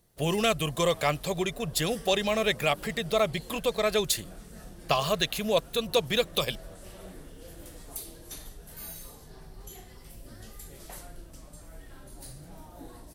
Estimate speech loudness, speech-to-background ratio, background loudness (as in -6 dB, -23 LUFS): -27.5 LUFS, 18.5 dB, -46.0 LUFS